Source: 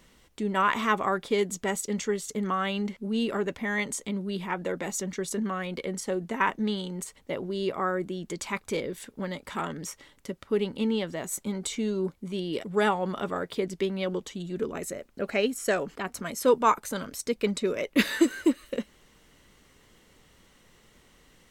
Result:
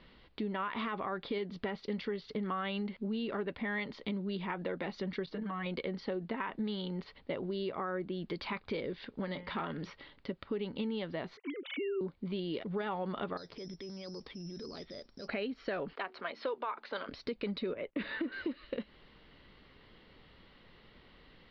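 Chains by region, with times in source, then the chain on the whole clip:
5.26–5.66 s: comb 6.4 ms, depth 97% + level held to a coarse grid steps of 18 dB + distance through air 130 m
9.21–9.90 s: block-companded coder 7-bit + de-hum 177.5 Hz, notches 19
11.37–12.01 s: formants replaced by sine waves + high-pass 370 Hz + tape noise reduction on one side only decoder only
13.37–15.28 s: distance through air 230 m + careless resampling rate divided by 8×, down filtered, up zero stuff
15.93–17.09 s: three-band isolator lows -23 dB, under 380 Hz, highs -12 dB, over 5.1 kHz + de-hum 74.87 Hz, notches 5
17.74–18.32 s: gate -46 dBFS, range -16 dB + distance through air 330 m + three bands expanded up and down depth 40%
whole clip: peak limiter -20.5 dBFS; steep low-pass 4.7 kHz 72 dB/octave; compression 4:1, threshold -34 dBFS

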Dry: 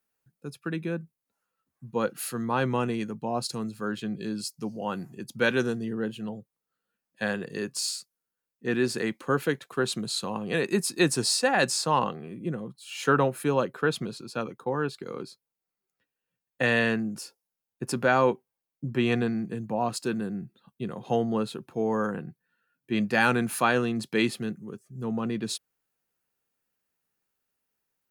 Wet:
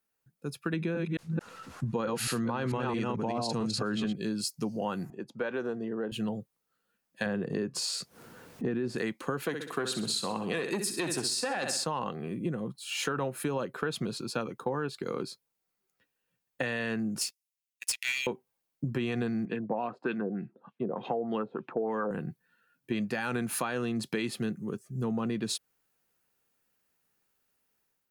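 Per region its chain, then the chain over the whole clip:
0.73–4.13 s: chunks repeated in reverse 221 ms, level -4 dB + low-pass 6.8 kHz + level flattener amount 50%
5.10–6.12 s: compression 2.5:1, threshold -28 dBFS + band-pass filter 680 Hz, Q 0.87
7.26–8.96 s: high-pass 240 Hz 6 dB/octave + tilt EQ -4 dB/octave + upward compressor, threshold -27 dBFS
9.46–11.84 s: high-pass 170 Hz 6 dB/octave + feedback delay 64 ms, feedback 40%, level -10 dB + transformer saturation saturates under 910 Hz
17.21–18.27 s: rippled Chebyshev high-pass 1.9 kHz, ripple 3 dB + waveshaping leveller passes 3
19.45–22.11 s: high-pass 210 Hz + LFO low-pass sine 3.3 Hz 520–3100 Hz
whole clip: level rider gain up to 6.5 dB; peak limiter -11.5 dBFS; compression, threshold -27 dBFS; trim -1.5 dB

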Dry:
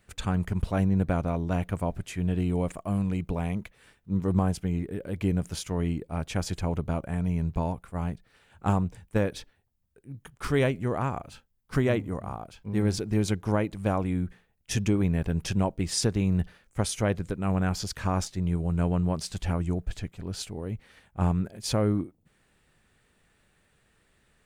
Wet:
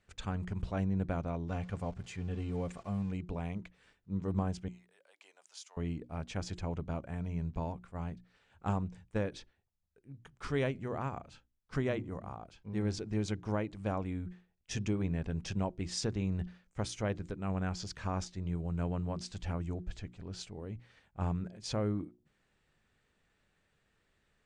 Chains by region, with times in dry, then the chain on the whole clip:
1.48–3.12 s: jump at every zero crossing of -42 dBFS + comb of notches 320 Hz
4.68–5.77 s: high-pass 840 Hz 24 dB/octave + peaking EQ 1.6 kHz -10.5 dB 2.4 oct
whole clip: low-pass 7.5 kHz 24 dB/octave; hum notches 60/120/180/240/300/360 Hz; trim -8 dB

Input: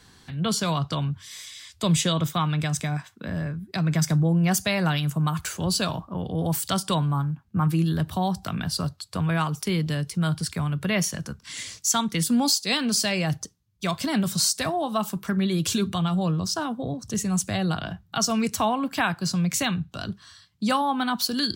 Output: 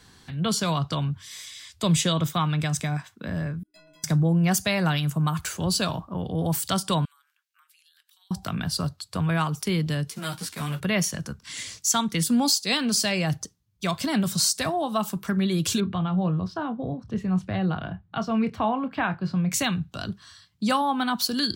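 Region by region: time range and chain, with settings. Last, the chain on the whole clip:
3.63–4.04 s: hard clipper -27.5 dBFS + inharmonic resonator 300 Hz, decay 0.73 s, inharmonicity 0.03
7.05–8.31 s: Bessel high-pass 2.6 kHz, order 6 + compression 5:1, threshold -59 dBFS
10.09–10.79 s: formants flattened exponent 0.6 + high-pass 140 Hz + three-phase chorus
15.80–19.52 s: distance through air 410 m + doubling 27 ms -12 dB
whole clip: none

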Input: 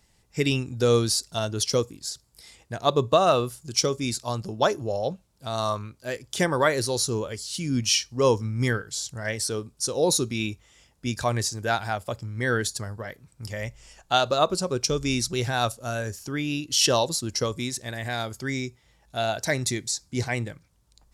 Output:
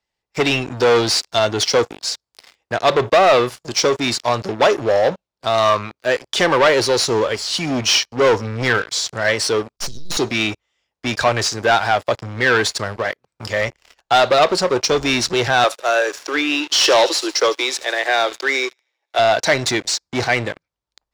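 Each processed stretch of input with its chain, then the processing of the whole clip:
9.76–10.17 s: partial rectifier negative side -12 dB + inverse Chebyshev band-stop 560–1700 Hz, stop band 60 dB + bass shelf 110 Hz +11 dB
15.64–19.19 s: steep high-pass 290 Hz 96 dB/octave + feedback echo behind a high-pass 78 ms, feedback 60%, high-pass 2.2 kHz, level -15 dB
whole clip: waveshaping leveller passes 5; three-band isolator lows -13 dB, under 350 Hz, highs -17 dB, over 5.5 kHz; trim -2 dB

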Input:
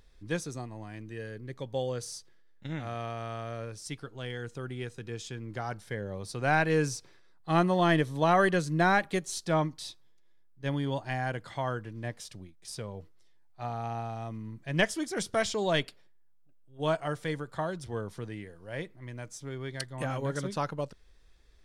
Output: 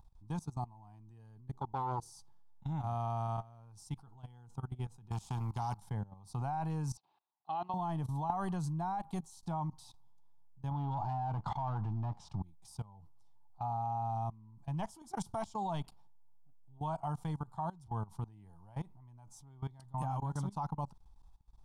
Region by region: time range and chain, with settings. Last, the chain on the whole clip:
1.53–2.11 s: peaking EQ 360 Hz +14.5 dB 0.61 oct + transformer saturation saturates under 1.1 kHz
5.11–5.80 s: peaking EQ 72 Hz +14 dB 2.4 oct + spectrum-flattening compressor 2:1
6.97–7.74 s: cabinet simulation 490–4200 Hz, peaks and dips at 500 Hz -5 dB, 930 Hz -5 dB, 1.3 kHz -6 dB, 1.9 kHz -3 dB, 2.8 kHz +9 dB, 4 kHz +4 dB + tape noise reduction on one side only decoder only
10.71–12.42 s: waveshaping leveller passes 3 + distance through air 140 m
whole clip: FFT filter 160 Hz 0 dB, 530 Hz -20 dB, 850 Hz +9 dB, 1.8 kHz -24 dB, 2.8 kHz -17 dB, 11 kHz -7 dB; level held to a coarse grid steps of 20 dB; trim +4.5 dB

